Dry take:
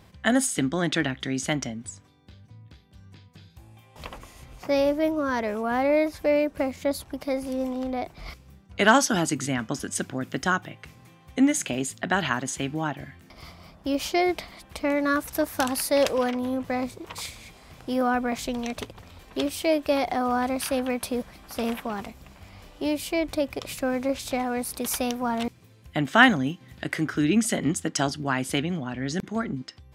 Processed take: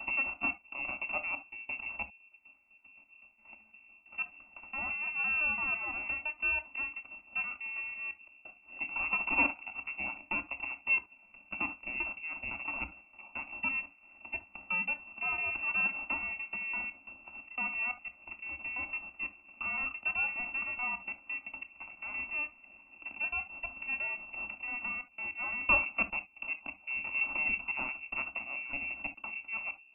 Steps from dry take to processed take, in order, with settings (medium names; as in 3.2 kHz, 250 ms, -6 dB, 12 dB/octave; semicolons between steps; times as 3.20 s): slices played last to first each 169 ms, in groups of 4; full-wave rectifier; frequency inversion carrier 2.7 kHz; static phaser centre 460 Hz, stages 6; on a send: reverberation, pre-delay 3 ms, DRR 8.5 dB; on the sum: trim -6.5 dB